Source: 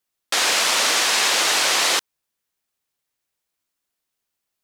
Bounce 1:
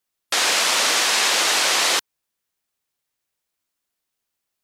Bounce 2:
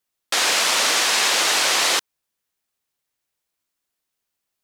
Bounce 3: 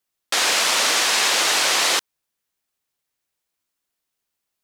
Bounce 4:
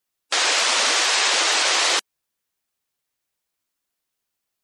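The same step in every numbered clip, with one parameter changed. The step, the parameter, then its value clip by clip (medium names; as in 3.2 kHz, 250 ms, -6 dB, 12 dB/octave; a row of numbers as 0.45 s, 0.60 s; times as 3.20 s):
spectral gate, under each frame's peak: -30 dB, -45 dB, -60 dB, -15 dB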